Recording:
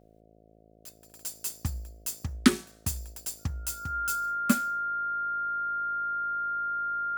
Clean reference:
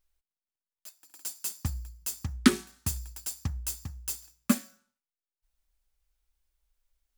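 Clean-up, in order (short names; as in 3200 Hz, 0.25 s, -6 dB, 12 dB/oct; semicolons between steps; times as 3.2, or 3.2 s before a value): de-hum 54.5 Hz, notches 13; notch 1400 Hz, Q 30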